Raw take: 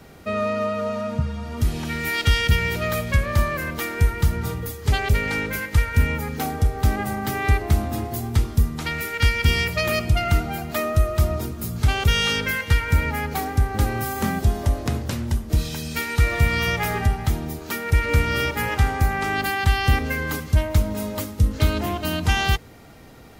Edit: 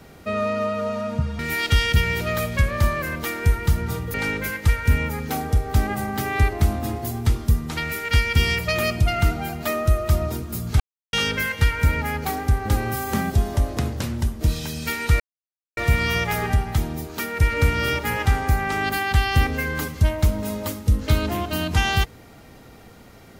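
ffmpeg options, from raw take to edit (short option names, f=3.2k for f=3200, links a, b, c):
-filter_complex "[0:a]asplit=6[a][b][c][d][e][f];[a]atrim=end=1.392[g];[b]atrim=start=1.938:end=4.692[h];[c]atrim=start=5.228:end=11.89,asetpts=PTS-STARTPTS,afade=t=out:st=6.658:d=0.004:c=hsin[i];[d]atrim=start=11.89:end=12.22,asetpts=PTS-STARTPTS,volume=0[j];[e]atrim=start=12.22:end=16.29,asetpts=PTS-STARTPTS,afade=t=in:d=0.004:c=hsin,afade=t=out:st=4.066:d=0.004:c=hsin,apad=pad_dur=0.57[k];[f]atrim=start=16.29,asetpts=PTS-STARTPTS,afade=t=in:d=0.004:c=hsin[l];[g][h]acrossfade=d=0.004:c1=hsin:c2=hsin[m];[i][j][k][l]concat=n=4:v=0:a=1[n];[m][n]acrossfade=d=0.004:c1=hsin:c2=hsin"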